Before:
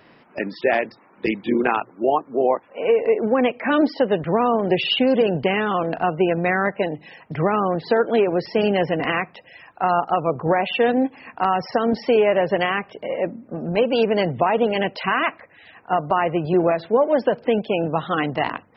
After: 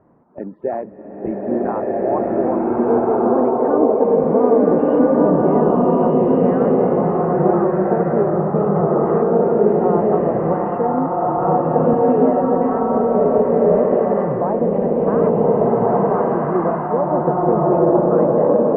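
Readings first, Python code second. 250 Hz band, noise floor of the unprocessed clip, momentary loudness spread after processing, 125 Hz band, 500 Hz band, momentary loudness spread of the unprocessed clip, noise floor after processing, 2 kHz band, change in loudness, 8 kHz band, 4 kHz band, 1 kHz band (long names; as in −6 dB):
+6.5 dB, −53 dBFS, 5 LU, +7.0 dB, +5.5 dB, 8 LU, −29 dBFS, −12.0 dB, +4.5 dB, can't be measured, below −30 dB, +3.0 dB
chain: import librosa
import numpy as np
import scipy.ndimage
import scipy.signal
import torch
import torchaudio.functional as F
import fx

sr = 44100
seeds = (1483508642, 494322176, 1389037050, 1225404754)

y = scipy.signal.sosfilt(scipy.signal.butter(4, 1100.0, 'lowpass', fs=sr, output='sos'), x)
y = fx.low_shelf(y, sr, hz=250.0, db=6.0)
y = fx.rev_bloom(y, sr, seeds[0], attack_ms=1510, drr_db=-7.0)
y = F.gain(torch.from_numpy(y), -4.0).numpy()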